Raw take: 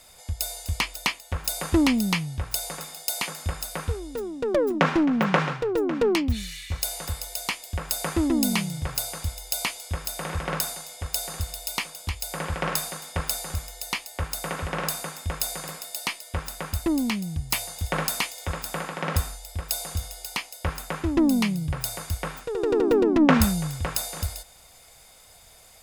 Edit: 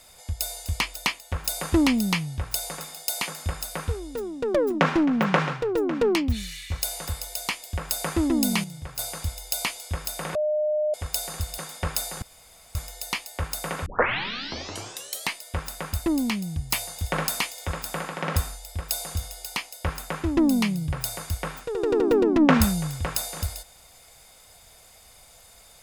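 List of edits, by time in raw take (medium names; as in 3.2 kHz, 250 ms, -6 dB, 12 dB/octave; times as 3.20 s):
8.64–8.99 s: gain -7.5 dB
10.35–10.94 s: bleep 607 Hz -21 dBFS
11.58–12.91 s: delete
13.55 s: insert room tone 0.53 s
14.66 s: tape start 1.50 s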